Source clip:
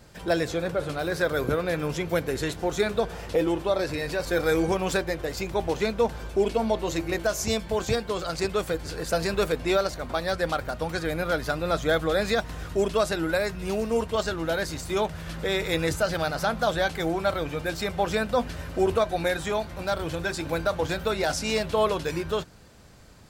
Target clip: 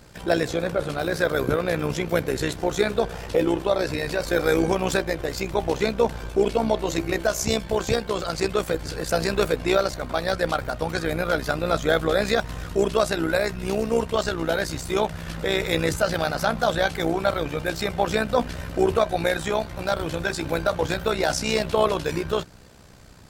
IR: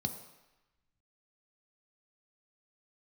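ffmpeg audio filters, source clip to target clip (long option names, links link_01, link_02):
-af "tremolo=f=63:d=0.667,acontrast=90,volume=-1.5dB"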